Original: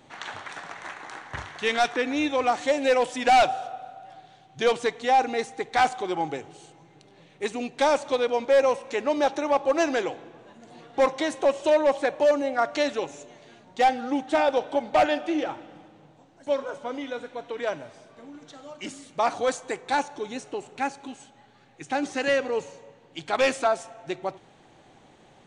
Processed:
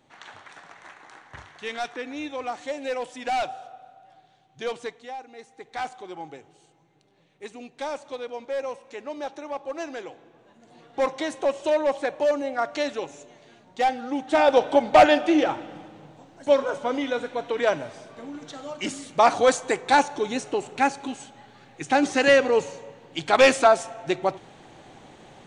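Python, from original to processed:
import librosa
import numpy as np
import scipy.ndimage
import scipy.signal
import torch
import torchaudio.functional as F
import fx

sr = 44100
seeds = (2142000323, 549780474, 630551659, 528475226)

y = fx.gain(x, sr, db=fx.line((4.87, -8.0), (5.24, -19.5), (5.71, -10.0), (10.0, -10.0), (11.13, -2.0), (14.14, -2.0), (14.59, 6.5)))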